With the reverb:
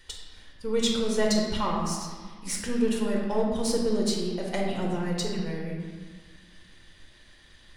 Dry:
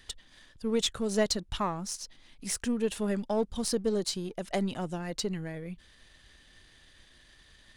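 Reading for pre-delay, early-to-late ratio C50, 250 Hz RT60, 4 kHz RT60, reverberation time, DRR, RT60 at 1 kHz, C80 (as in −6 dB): 4 ms, 1.5 dB, 2.1 s, 1.1 s, 1.6 s, −2.5 dB, 1.6 s, 3.5 dB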